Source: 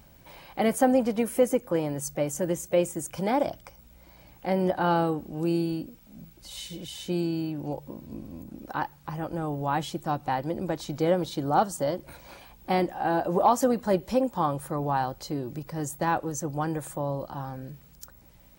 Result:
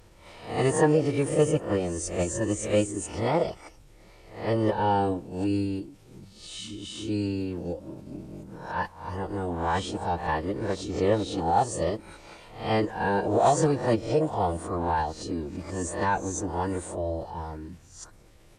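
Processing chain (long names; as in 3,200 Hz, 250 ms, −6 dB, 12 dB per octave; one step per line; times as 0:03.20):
peak hold with a rise ahead of every peak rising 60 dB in 0.48 s
phase-vocoder pitch shift with formants kept −9 semitones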